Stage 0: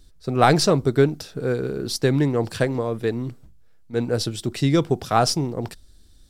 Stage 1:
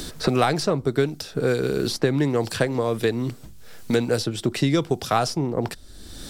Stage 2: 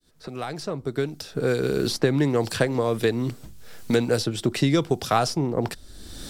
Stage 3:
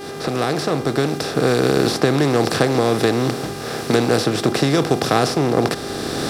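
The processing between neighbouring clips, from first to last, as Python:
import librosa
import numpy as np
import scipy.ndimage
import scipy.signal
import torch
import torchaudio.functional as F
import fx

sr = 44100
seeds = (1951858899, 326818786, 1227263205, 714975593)

y1 = fx.low_shelf(x, sr, hz=270.0, db=-4.0)
y1 = fx.band_squash(y1, sr, depth_pct=100)
y2 = fx.fade_in_head(y1, sr, length_s=1.74)
y3 = fx.bin_compress(y2, sr, power=0.4)
y3 = scipy.signal.sosfilt(scipy.signal.butter(2, 51.0, 'highpass', fs=sr, output='sos'), y3)
y3 = fx.dmg_buzz(y3, sr, base_hz=400.0, harmonics=33, level_db=-34.0, tilt_db=-7, odd_only=False)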